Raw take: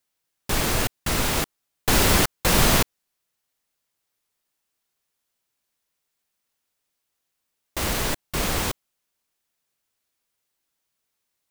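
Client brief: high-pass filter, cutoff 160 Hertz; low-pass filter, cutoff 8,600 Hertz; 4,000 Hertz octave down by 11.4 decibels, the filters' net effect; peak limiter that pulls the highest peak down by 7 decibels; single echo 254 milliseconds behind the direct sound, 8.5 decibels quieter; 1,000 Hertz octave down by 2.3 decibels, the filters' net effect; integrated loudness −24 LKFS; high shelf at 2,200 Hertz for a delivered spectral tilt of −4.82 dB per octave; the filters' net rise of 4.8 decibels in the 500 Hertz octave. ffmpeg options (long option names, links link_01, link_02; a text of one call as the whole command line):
ffmpeg -i in.wav -af "highpass=160,lowpass=8600,equalizer=frequency=500:width_type=o:gain=7.5,equalizer=frequency=1000:width_type=o:gain=-3.5,highshelf=frequency=2200:gain=-8.5,equalizer=frequency=4000:width_type=o:gain=-6.5,alimiter=limit=-15.5dB:level=0:latency=1,aecho=1:1:254:0.376,volume=4dB" out.wav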